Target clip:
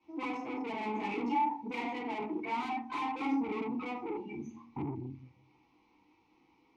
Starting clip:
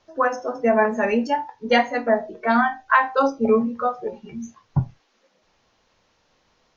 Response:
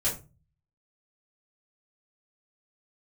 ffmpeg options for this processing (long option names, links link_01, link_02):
-filter_complex "[1:a]atrim=start_sample=2205,asetrate=35721,aresample=44100[link_01];[0:a][link_01]afir=irnorm=-1:irlink=0,aeval=exprs='(tanh(12.6*val(0)+0.45)-tanh(0.45))/12.6':channel_layout=same,asplit=3[link_02][link_03][link_04];[link_02]bandpass=frequency=300:width_type=q:width=8,volume=0dB[link_05];[link_03]bandpass=frequency=870:width_type=q:width=8,volume=-6dB[link_06];[link_04]bandpass=frequency=2240:width_type=q:width=8,volume=-9dB[link_07];[link_05][link_06][link_07]amix=inputs=3:normalize=0,volume=3.5dB"